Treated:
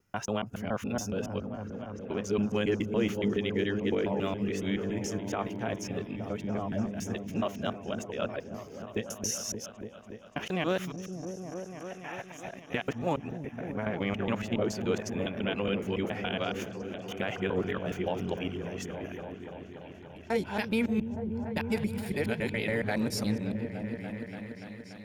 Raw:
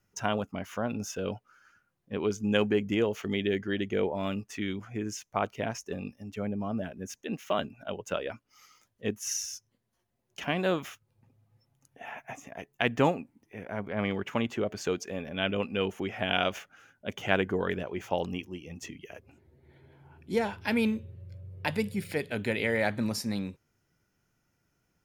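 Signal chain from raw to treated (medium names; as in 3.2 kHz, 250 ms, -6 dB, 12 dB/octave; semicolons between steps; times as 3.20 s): time reversed locally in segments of 140 ms; peak limiter -19 dBFS, peak gain reduction 11 dB; delay with an opening low-pass 289 ms, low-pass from 200 Hz, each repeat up 1 oct, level -3 dB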